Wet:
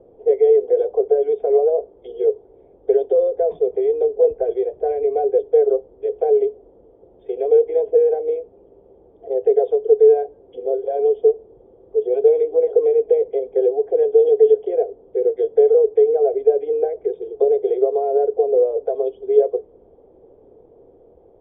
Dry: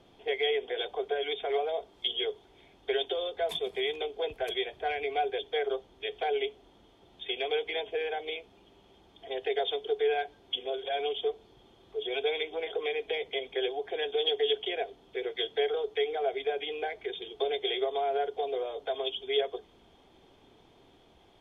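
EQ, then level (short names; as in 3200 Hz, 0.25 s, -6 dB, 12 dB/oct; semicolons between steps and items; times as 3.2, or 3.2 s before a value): synth low-pass 490 Hz, resonance Q 4.9; air absorption 76 m; bell 200 Hz -5.5 dB 1.9 oct; +7.5 dB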